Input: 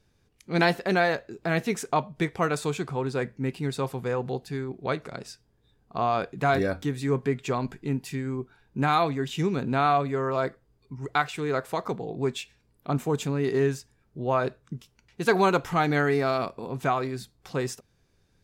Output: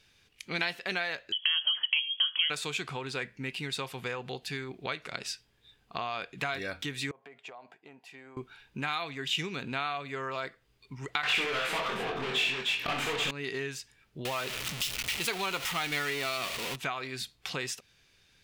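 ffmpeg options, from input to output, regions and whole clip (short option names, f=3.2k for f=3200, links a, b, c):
-filter_complex "[0:a]asettb=1/sr,asplit=3[a][b][c];[a]atrim=end=1.324[d];[b]atrim=start=1.32:end=2.5,asetpts=PTS-STARTPTS,afade=t=in:d=0.004:c=qsin,afade=t=out:st=1.176:d=0.004:c=qsin,equalizer=f=1k:w=1:g=-7,acompressor=threshold=-30dB:ratio=3:attack=3.2:release=140:knee=1:detection=peak,lowpass=f=2.9k:t=q:w=0.5098,lowpass=f=2.9k:t=q:w=0.6013,lowpass=f=2.9k:t=q:w=0.9,lowpass=f=2.9k:t=q:w=2.563,afreqshift=-3400[e];[c]atrim=start=2.496[f];[d][e]acrossfade=d=0.004:c1=hsin:c2=qsin[g];[g][f]acrossfade=d=0.004:c1=qsin:c2=hsin,asettb=1/sr,asplit=3[h][i][j];[h]atrim=end=7.114[k];[i]atrim=start=7.11:end=8.37,asetpts=PTS-STARTPTS,afade=t=in:d=0.004:c=qsin,afade=t=out:st=1.256:d=0.004:c=qsin,bandpass=f=700:t=q:w=3.8,aemphasis=mode=production:type=50kf,acompressor=threshold=-44dB:ratio=8:attack=3.2:release=140:knee=1:detection=peak[l];[j]atrim=start=8.366[m];[k][l]acrossfade=d=0.004:c1=hsin:c2=qsin[n];[n][m]acrossfade=d=0.004:c1=qsin:c2=hsin,asettb=1/sr,asplit=3[o][p][q];[o]atrim=end=11.234[r];[p]atrim=start=11.23:end=13.31,asetpts=PTS-STARTPTS,afade=t=in:d=0.004:c=qsin,afade=t=out:st=2.076:d=0.004:c=qsin,asplit=2[s][t];[t]highpass=f=720:p=1,volume=34dB,asoftclip=type=tanh:threshold=-14dB[u];[s][u]amix=inputs=2:normalize=0,lowpass=f=1.5k:p=1,volume=-6dB,asplit=2[v][w];[w]adelay=23,volume=-5dB[x];[v][x]amix=inputs=2:normalize=0,atrim=end_sample=91728,aecho=1:1:65|307:0.596|0.355,atrim=end_sample=91728[y];[q]atrim=start=13.306[z];[r][y]acrossfade=d=0.004:c1=hsin:c2=qsin[aa];[aa][z]acrossfade=d=0.004:c1=qsin:c2=hsin,asettb=1/sr,asplit=3[ab][ac][ad];[ab]atrim=end=14.254[ae];[ac]atrim=start=14.25:end=16.76,asetpts=PTS-STARTPTS,afade=t=in:d=0.004:c=qsin,afade=t=out:st=2.506:d=0.004:c=qsin,aeval=exprs='val(0)+0.5*0.0473*sgn(val(0))':c=same,highshelf=f=5.3k:g=6,bandreject=f=1.6k:w=15[af];[ad]atrim=start=16.756[ag];[ae][af]acrossfade=d=0.004:c1=hsin:c2=qsin[ah];[ah][ag]acrossfade=d=0.004:c1=qsin:c2=hsin,tiltshelf=f=970:g=-5,acompressor=threshold=-36dB:ratio=4,equalizer=f=2.8k:w=0.96:g=11"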